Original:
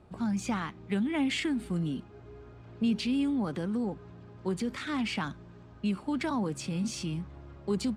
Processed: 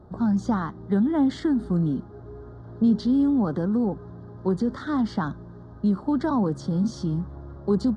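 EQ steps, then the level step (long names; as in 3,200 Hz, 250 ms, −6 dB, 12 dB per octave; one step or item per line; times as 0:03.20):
Butterworth band-reject 2,500 Hz, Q 1.1
head-to-tape spacing loss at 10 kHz 21 dB
parametric band 7,600 Hz −3 dB 0.22 octaves
+8.5 dB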